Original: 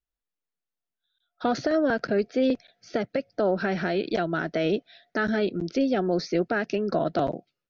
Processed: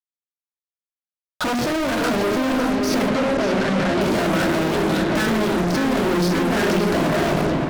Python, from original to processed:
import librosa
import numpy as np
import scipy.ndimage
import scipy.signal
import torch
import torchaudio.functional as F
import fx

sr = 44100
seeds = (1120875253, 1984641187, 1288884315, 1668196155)

p1 = fx.low_shelf(x, sr, hz=250.0, db=5.0)
p2 = fx.room_shoebox(p1, sr, seeds[0], volume_m3=500.0, walls='furnished', distance_m=2.6)
p3 = fx.over_compress(p2, sr, threshold_db=-27.0, ratio=-1.0)
p4 = p2 + F.gain(torch.from_numpy(p3), 1.0).numpy()
p5 = fx.fuzz(p4, sr, gain_db=34.0, gate_db=-38.0)
p6 = fx.air_absorb(p5, sr, metres=55.0, at=(3.08, 4.01))
p7 = p6 + fx.echo_filtered(p6, sr, ms=572, feedback_pct=64, hz=3600.0, wet_db=-4.5, dry=0)
p8 = fx.pre_swell(p7, sr, db_per_s=20.0)
y = F.gain(torch.from_numpy(p8), -7.5).numpy()